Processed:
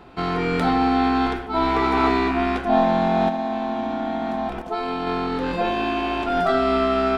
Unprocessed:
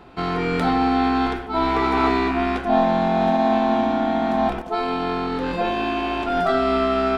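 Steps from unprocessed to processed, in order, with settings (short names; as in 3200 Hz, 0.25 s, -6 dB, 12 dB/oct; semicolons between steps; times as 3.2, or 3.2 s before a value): 3.28–5.07 compressor, threshold -22 dBFS, peak gain reduction 7.5 dB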